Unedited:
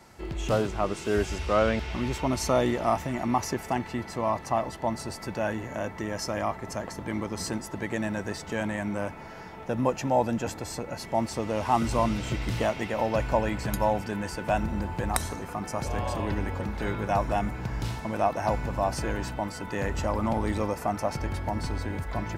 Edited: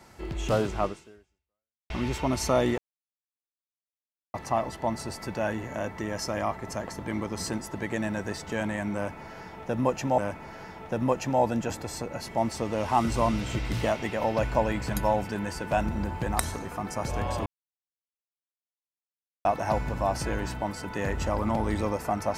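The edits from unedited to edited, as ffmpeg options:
ffmpeg -i in.wav -filter_complex "[0:a]asplit=7[link_01][link_02][link_03][link_04][link_05][link_06][link_07];[link_01]atrim=end=1.9,asetpts=PTS-STARTPTS,afade=type=out:start_time=0.85:duration=1.05:curve=exp[link_08];[link_02]atrim=start=1.9:end=2.78,asetpts=PTS-STARTPTS,afade=type=in:duration=0.004:curve=hsin,afade=type=out:start_time=0.876:duration=0.004:curve=hsin[link_09];[link_03]atrim=start=2.78:end=4.34,asetpts=PTS-STARTPTS,volume=0[link_10];[link_04]atrim=start=4.34:end=10.182,asetpts=PTS-STARTPTS,afade=type=in:duration=0.004:curve=hsin[link_11];[link_05]atrim=start=8.948:end=16.23,asetpts=PTS-STARTPTS,afade=type=out:start_time=7.278:duration=0.004:curve=hsin[link_12];[link_06]atrim=start=16.23:end=18.22,asetpts=PTS-STARTPTS,volume=0[link_13];[link_07]atrim=start=18.22,asetpts=PTS-STARTPTS,afade=type=in:duration=0.004:curve=hsin[link_14];[link_08][link_09][link_10][link_11]concat=n=4:v=0:a=1[link_15];[link_12][link_13][link_14]concat=n=3:v=0:a=1[link_16];[link_15][link_16]acrossfade=duration=0.004:curve1=hsin:curve2=hsin" out.wav

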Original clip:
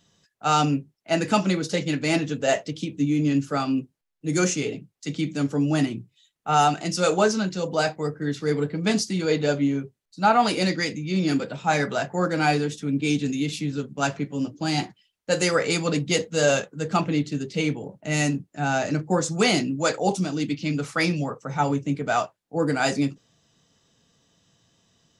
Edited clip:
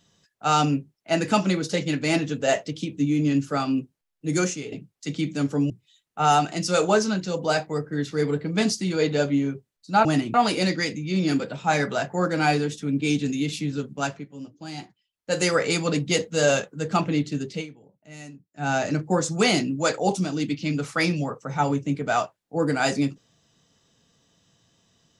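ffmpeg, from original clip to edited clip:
ffmpeg -i in.wav -filter_complex "[0:a]asplit=9[link_01][link_02][link_03][link_04][link_05][link_06][link_07][link_08][link_09];[link_01]atrim=end=4.72,asetpts=PTS-STARTPTS,afade=type=out:start_time=4.37:duration=0.35:curve=qua:silence=0.375837[link_10];[link_02]atrim=start=4.72:end=5.702,asetpts=PTS-STARTPTS,afade=type=in:duration=0.004:curve=hsin:silence=0.375837[link_11];[link_03]atrim=start=5.988:end=10.342[link_12];[link_04]atrim=start=5.698:end=5.992[link_13];[link_05]atrim=start=10.338:end=14.26,asetpts=PTS-STARTPTS,afade=type=out:start_time=3.582:duration=0.34:silence=0.266073[link_14];[link_06]atrim=start=14.26:end=15.09,asetpts=PTS-STARTPTS,volume=-11.5dB[link_15];[link_07]atrim=start=15.09:end=17.67,asetpts=PTS-STARTPTS,afade=type=in:duration=0.34:silence=0.266073,afade=type=out:start_time=2.42:duration=0.16:silence=0.11885[link_16];[link_08]atrim=start=17.67:end=18.53,asetpts=PTS-STARTPTS,volume=-18.5dB[link_17];[link_09]atrim=start=18.53,asetpts=PTS-STARTPTS,afade=type=in:duration=0.16:silence=0.11885[link_18];[link_10][link_11]concat=n=2:v=0:a=1[link_19];[link_19][link_12]acrossfade=duration=0.004:curve1=hsin:curve2=hsin[link_20];[link_20][link_13]acrossfade=duration=0.004:curve1=hsin:curve2=hsin[link_21];[link_14][link_15][link_16][link_17][link_18]concat=n=5:v=0:a=1[link_22];[link_21][link_22]acrossfade=duration=0.004:curve1=hsin:curve2=hsin" out.wav

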